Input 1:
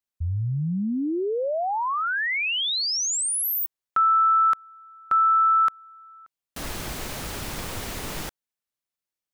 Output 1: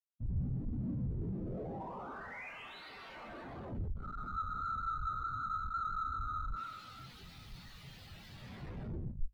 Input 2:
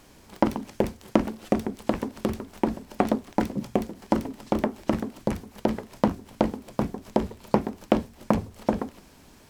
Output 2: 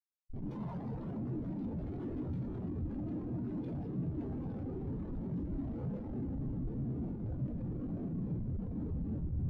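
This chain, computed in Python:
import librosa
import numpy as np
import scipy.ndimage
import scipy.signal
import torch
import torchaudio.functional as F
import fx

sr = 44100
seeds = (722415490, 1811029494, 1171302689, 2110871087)

y = fx.gate_hold(x, sr, open_db=-40.0, close_db=-49.0, hold_ms=71.0, range_db=-18, attack_ms=1.3, release_ms=389.0)
y = F.preemphasis(torch.from_numpy(y), 0.8).numpy()
y = fx.over_compress(y, sr, threshold_db=-44.0, ratio=-1.0)
y = fx.graphic_eq(y, sr, hz=(125, 250, 2000, 4000, 8000), db=(9, -3, 3, 8, -8))
y = fx.echo_alternate(y, sr, ms=288, hz=970.0, feedback_pct=59, wet_db=-7.5)
y = fx.whisperise(y, sr, seeds[0])
y = fx.rev_plate(y, sr, seeds[1], rt60_s=4.0, hf_ratio=0.75, predelay_ms=0, drr_db=-8.0)
y = fx.schmitt(y, sr, flips_db=-37.5)
y = fx.hum_notches(y, sr, base_hz=50, count=4)
y = 10.0 ** (-31.0 / 20.0) * np.tanh(y / 10.0 ** (-31.0 / 20.0))
y = fx.spectral_expand(y, sr, expansion=2.5)
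y = y * librosa.db_to_amplitude(5.0)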